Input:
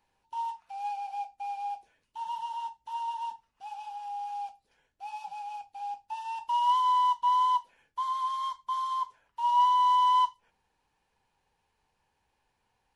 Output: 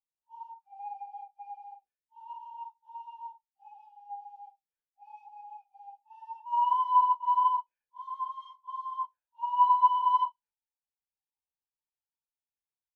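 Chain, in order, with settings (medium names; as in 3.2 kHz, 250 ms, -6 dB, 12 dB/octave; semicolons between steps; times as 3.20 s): phase randomisation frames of 100 ms; spectral contrast expander 1.5:1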